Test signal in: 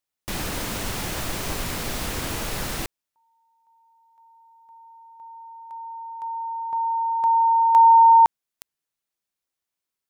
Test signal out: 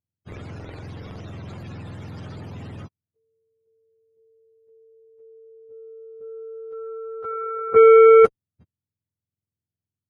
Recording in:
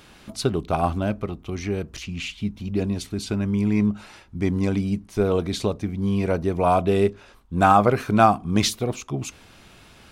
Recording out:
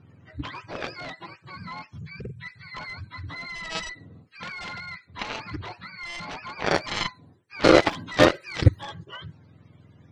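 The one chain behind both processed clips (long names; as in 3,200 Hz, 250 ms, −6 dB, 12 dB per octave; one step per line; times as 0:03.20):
frequency axis turned over on the octave scale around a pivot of 640 Hz
harmonic generator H 2 −35 dB, 5 −34 dB, 7 −13 dB, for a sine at −4 dBFS
low-pass that shuts in the quiet parts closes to 2,900 Hz, open at −17.5 dBFS
level +1 dB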